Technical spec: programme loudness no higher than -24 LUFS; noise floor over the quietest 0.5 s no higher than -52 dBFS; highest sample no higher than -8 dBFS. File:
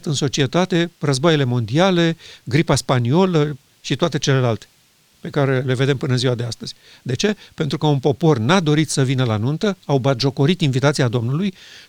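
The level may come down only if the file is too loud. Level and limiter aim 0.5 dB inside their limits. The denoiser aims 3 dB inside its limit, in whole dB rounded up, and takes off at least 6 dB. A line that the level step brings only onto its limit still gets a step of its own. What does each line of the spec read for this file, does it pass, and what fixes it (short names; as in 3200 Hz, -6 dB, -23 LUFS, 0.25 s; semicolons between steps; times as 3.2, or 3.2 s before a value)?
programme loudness -18.5 LUFS: fail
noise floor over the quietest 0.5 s -56 dBFS: OK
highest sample -4.0 dBFS: fail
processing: gain -6 dB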